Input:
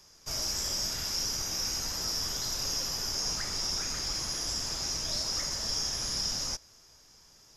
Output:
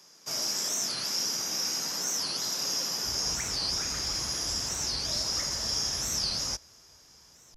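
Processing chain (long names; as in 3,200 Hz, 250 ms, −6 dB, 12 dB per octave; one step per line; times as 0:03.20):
high-pass filter 160 Hz 24 dB per octave, from 0:03.04 42 Hz
wow of a warped record 45 rpm, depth 250 cents
level +2 dB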